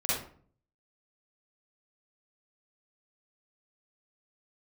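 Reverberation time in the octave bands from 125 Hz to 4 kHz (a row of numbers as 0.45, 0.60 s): 0.75, 0.65, 0.55, 0.45, 0.40, 0.30 s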